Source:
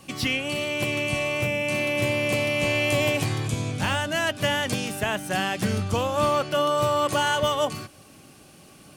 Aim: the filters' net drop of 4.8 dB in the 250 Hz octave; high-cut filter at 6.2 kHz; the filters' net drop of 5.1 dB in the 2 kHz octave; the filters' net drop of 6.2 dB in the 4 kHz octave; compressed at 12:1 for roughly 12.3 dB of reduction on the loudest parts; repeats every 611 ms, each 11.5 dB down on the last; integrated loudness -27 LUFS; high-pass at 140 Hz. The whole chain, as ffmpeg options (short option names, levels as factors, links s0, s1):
-af "highpass=140,lowpass=6200,equalizer=f=250:t=o:g=-5.5,equalizer=f=2000:t=o:g=-4.5,equalizer=f=4000:t=o:g=-6.5,acompressor=threshold=0.0224:ratio=12,aecho=1:1:611|1222|1833:0.266|0.0718|0.0194,volume=2.99"